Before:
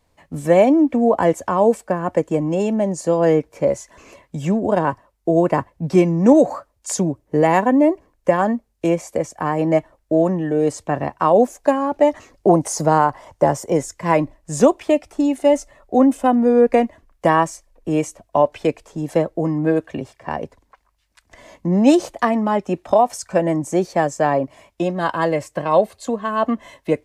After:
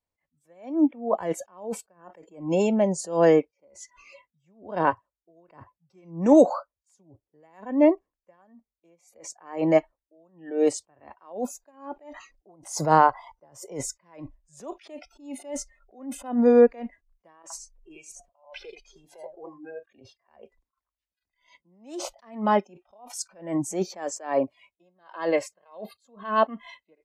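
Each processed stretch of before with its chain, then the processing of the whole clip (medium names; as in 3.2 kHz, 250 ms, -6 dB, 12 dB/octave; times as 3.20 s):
17.42–19.83 s: compression, threshold -29 dBFS + delay 83 ms -6.5 dB
whole clip: spectral noise reduction 24 dB; bass shelf 420 Hz -4 dB; attacks held to a fixed rise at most 140 dB/s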